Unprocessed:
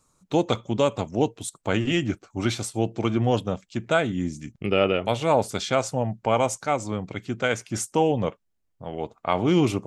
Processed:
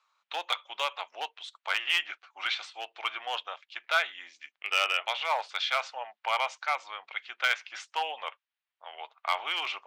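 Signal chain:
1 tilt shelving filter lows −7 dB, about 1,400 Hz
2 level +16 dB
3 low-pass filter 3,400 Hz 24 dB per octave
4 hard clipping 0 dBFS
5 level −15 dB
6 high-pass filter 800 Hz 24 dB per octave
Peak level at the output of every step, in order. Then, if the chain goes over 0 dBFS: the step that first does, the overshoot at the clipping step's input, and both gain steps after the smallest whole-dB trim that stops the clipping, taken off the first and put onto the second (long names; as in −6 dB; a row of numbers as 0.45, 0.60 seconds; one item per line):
−8.0, +8.0, +7.5, 0.0, −15.0, −11.0 dBFS
step 2, 7.5 dB
step 2 +8 dB, step 5 −7 dB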